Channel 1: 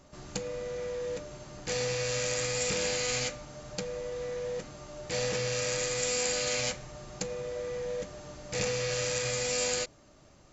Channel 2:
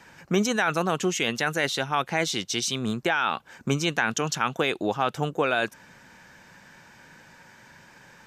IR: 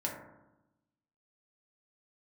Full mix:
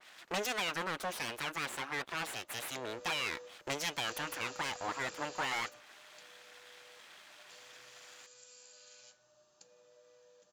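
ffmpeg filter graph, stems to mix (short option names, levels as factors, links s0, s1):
-filter_complex "[0:a]equalizer=f=2100:t=o:w=0.27:g=-14,acompressor=threshold=0.02:ratio=6,adelay=2400,volume=0.562,asplit=2[s0][s1];[s1]volume=0.1[s2];[1:a]bass=f=250:g=2,treble=f=4000:g=-6,aeval=exprs='abs(val(0))':c=same,volume=1.26,asplit=2[s3][s4];[s4]apad=whole_len=570105[s5];[s0][s5]sidechaingate=range=0.126:threshold=0.0112:ratio=16:detection=peak[s6];[2:a]atrim=start_sample=2205[s7];[s2][s7]afir=irnorm=-1:irlink=0[s8];[s6][s3][s8]amix=inputs=3:normalize=0,highpass=f=1400:p=1,asoftclip=type=tanh:threshold=0.0473,adynamicequalizer=threshold=0.00398:dfrequency=2200:dqfactor=0.7:tfrequency=2200:tqfactor=0.7:attack=5:release=100:ratio=0.375:range=4:mode=cutabove:tftype=highshelf"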